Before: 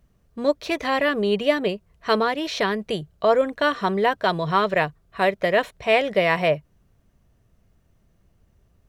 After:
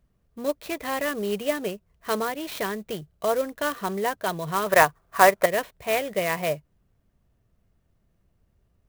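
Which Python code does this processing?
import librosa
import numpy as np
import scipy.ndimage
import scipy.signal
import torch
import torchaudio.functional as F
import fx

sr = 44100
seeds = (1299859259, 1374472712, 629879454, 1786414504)

y = fx.peak_eq(x, sr, hz=1100.0, db=15.0, octaves=2.4, at=(4.66, 5.46))
y = fx.clock_jitter(y, sr, seeds[0], jitter_ms=0.036)
y = y * librosa.db_to_amplitude(-6.0)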